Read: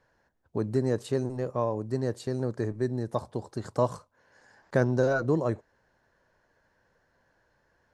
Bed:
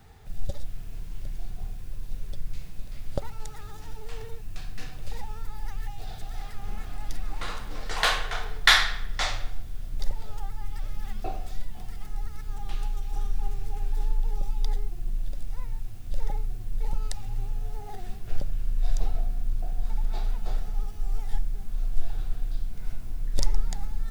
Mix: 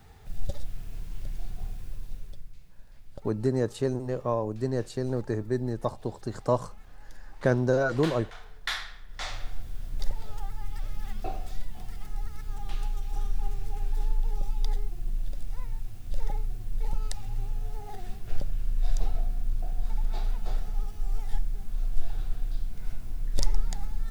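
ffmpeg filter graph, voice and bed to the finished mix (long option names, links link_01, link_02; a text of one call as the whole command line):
ffmpeg -i stem1.wav -i stem2.wav -filter_complex "[0:a]adelay=2700,volume=0.5dB[link_01];[1:a]volume=13dB,afade=type=out:start_time=1.84:duration=0.69:silence=0.199526,afade=type=in:start_time=9.07:duration=0.55:silence=0.211349[link_02];[link_01][link_02]amix=inputs=2:normalize=0" out.wav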